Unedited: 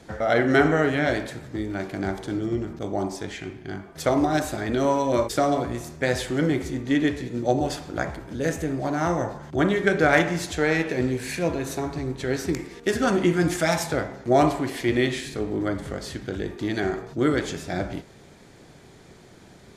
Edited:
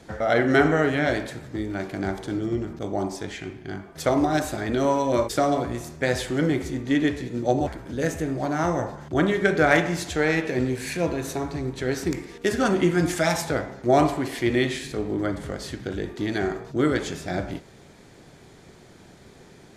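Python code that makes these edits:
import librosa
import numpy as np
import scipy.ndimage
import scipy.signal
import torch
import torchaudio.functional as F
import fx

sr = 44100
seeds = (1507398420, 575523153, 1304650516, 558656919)

y = fx.edit(x, sr, fx.cut(start_s=7.67, length_s=0.42), tone=tone)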